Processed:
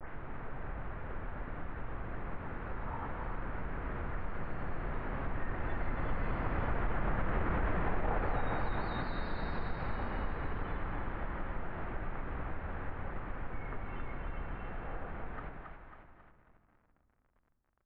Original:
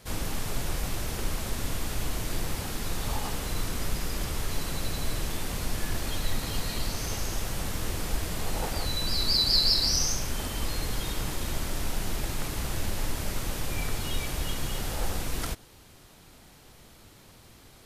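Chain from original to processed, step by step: tape start-up on the opening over 0.35 s; Doppler pass-by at 7.57 s, 24 m/s, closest 12 m; two-band feedback delay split 650 Hz, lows 119 ms, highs 272 ms, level -5 dB; peak limiter -26.5 dBFS, peak gain reduction 9.5 dB; tilt shelf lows -4.5 dB, about 890 Hz; bit crusher 11-bit; inverse Chebyshev low-pass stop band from 5.5 kHz, stop band 60 dB; on a send at -14.5 dB: reverberation RT60 3.1 s, pre-delay 6 ms; on the sum: compression 2:1, threshold -52 dBFS, peak gain reduction 10 dB; trim +16.5 dB

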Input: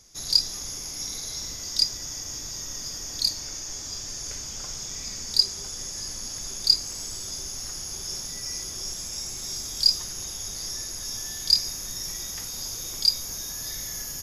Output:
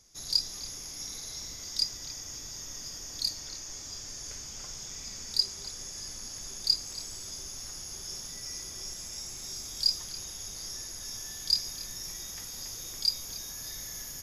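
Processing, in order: repeats whose band climbs or falls 280 ms, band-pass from 2.5 kHz, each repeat -0.7 oct, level -5 dB; trim -6.5 dB

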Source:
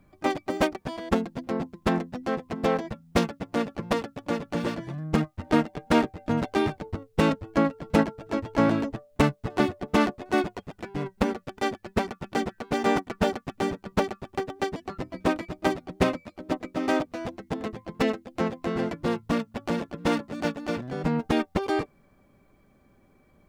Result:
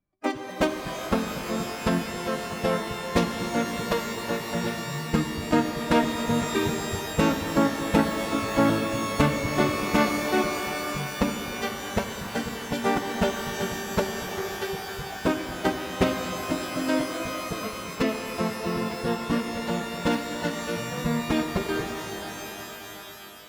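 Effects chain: spectral noise reduction 24 dB; pitch-shifted reverb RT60 3.8 s, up +12 st, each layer -2 dB, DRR 6 dB

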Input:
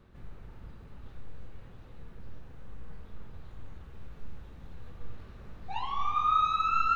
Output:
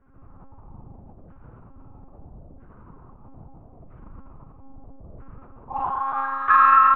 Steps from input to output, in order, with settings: local Wiener filter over 25 samples; harmony voices -4 st -10 dB, +5 st -9 dB; high-pass 100 Hz 12 dB/octave; peaking EQ 380 Hz -12.5 dB 2.4 oct; in parallel at -1.5 dB: compression, threshold -35 dBFS, peak gain reduction 10.5 dB; on the sum: flange 0.62 Hz, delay 4.5 ms, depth 9 ms, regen -4%; flutter echo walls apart 6.5 m, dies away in 1.1 s; LFO low-pass saw down 0.77 Hz 590–1600 Hz; reverberation, pre-delay 6 ms, DRR 11 dB; low-pass that closes with the level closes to 2.7 kHz, closed at -24 dBFS; monotone LPC vocoder at 8 kHz 270 Hz; trim +6.5 dB

